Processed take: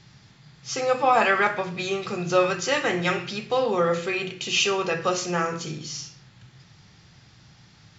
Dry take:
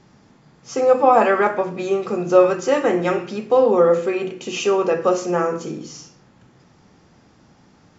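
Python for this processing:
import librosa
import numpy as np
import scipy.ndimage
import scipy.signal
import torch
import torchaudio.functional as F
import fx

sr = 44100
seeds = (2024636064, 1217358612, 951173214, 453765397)

y = fx.graphic_eq(x, sr, hz=(125, 250, 500, 1000, 2000, 4000), db=(8, -10, -7, -4, 3, 9))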